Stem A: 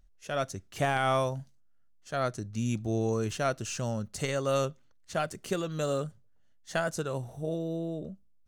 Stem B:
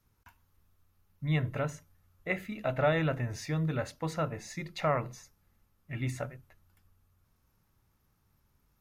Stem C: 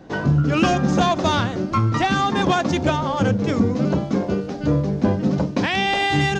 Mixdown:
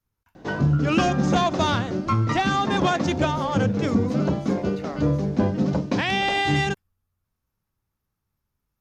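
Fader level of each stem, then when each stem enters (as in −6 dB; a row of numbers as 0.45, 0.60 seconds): muted, −8.5 dB, −2.5 dB; muted, 0.00 s, 0.35 s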